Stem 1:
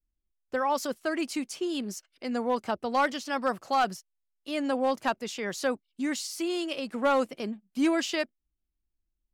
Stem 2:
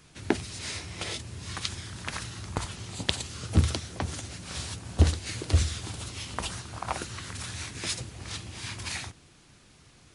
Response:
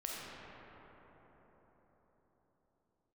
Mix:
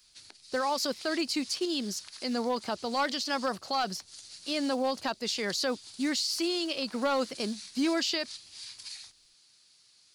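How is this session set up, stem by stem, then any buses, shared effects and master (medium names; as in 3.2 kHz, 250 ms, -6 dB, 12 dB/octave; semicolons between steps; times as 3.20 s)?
0.0 dB, 0.00 s, no send, companded quantiser 8-bit
-16.5 dB, 0.00 s, no send, compression 10:1, threshold -37 dBFS, peak gain reduction 23 dB; tilt EQ +4 dB/octave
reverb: none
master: peaking EQ 4.5 kHz +13 dB 0.6 oct; peak limiter -20.5 dBFS, peak gain reduction 7.5 dB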